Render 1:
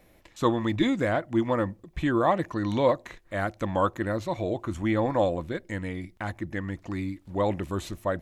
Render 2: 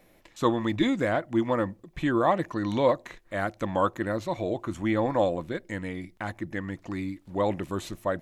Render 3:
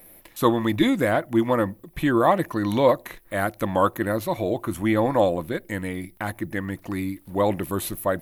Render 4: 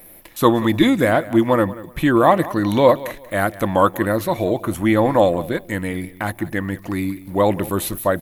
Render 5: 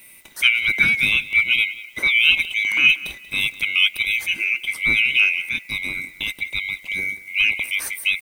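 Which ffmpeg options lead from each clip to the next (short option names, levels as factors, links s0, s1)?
-af "equalizer=f=65:w=2.1:g=-14.5"
-af "aexciter=amount=8.5:drive=5.4:freq=9700,volume=1.68"
-af "aecho=1:1:185|370:0.126|0.0315,volume=1.78"
-af "afftfilt=real='real(if(lt(b,920),b+92*(1-2*mod(floor(b/92),2)),b),0)':imag='imag(if(lt(b,920),b+92*(1-2*mod(floor(b/92),2)),b),0)':win_size=2048:overlap=0.75,acrusher=bits=7:mix=0:aa=0.5,volume=0.75"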